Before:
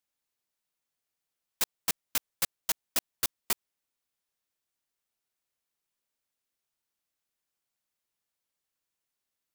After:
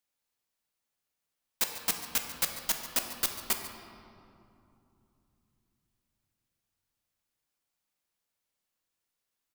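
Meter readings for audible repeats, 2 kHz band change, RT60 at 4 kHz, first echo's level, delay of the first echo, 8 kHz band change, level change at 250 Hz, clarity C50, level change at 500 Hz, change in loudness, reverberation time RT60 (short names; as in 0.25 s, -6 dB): 1, +1.5 dB, 1.5 s, -15.0 dB, 0.142 s, +0.5 dB, +2.5 dB, 5.5 dB, +1.5 dB, +0.5 dB, 2.8 s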